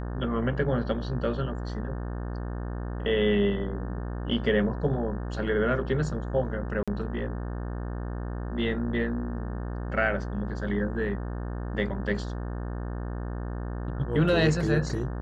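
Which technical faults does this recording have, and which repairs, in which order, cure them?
mains buzz 60 Hz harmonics 30 −33 dBFS
0:06.83–0:06.88: drop-out 46 ms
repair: hum removal 60 Hz, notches 30
repair the gap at 0:06.83, 46 ms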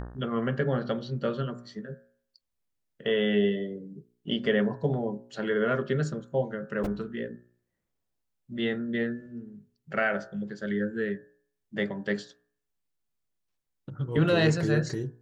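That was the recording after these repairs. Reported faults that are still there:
none of them is left

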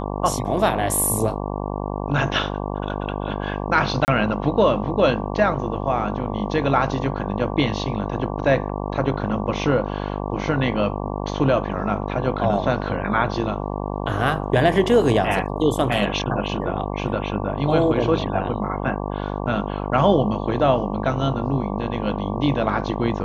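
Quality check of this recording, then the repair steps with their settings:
mains buzz 50 Hz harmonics 23 −27 dBFS
0:04.05–0:04.08: drop-out 29 ms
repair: hum removal 50 Hz, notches 23
repair the gap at 0:04.05, 29 ms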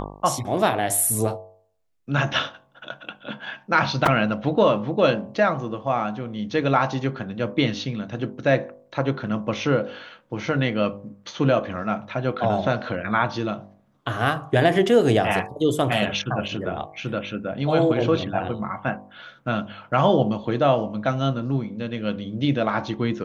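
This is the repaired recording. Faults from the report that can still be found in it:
none of them is left

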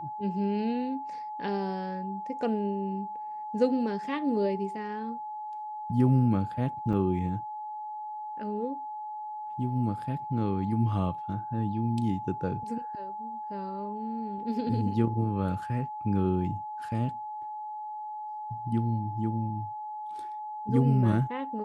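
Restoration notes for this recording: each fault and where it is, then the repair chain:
whistle 850 Hz −35 dBFS
0:06.93: drop-out 4.9 ms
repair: notch filter 850 Hz, Q 30
repair the gap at 0:06.93, 4.9 ms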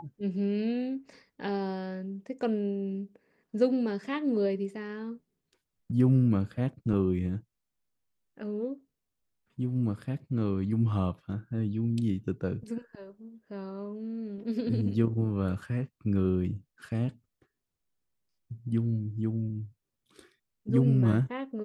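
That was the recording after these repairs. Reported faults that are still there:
none of them is left

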